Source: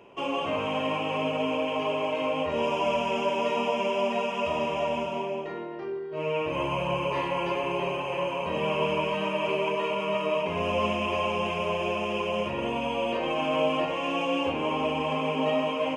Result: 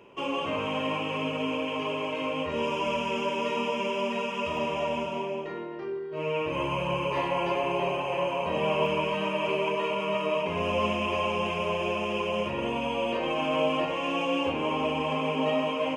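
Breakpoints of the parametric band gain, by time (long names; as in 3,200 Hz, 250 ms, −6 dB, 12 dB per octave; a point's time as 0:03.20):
parametric band 710 Hz 0.34 octaves
−7 dB
from 0:01.04 −13.5 dB
from 0:04.57 −5.5 dB
from 0:07.17 +5 dB
from 0:08.86 −2.5 dB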